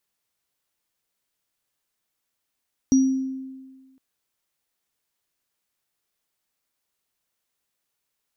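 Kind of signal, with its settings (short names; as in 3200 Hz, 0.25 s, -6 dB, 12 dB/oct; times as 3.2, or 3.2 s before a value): sine partials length 1.06 s, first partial 264 Hz, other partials 5760 Hz, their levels -13 dB, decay 1.48 s, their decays 0.50 s, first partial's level -12 dB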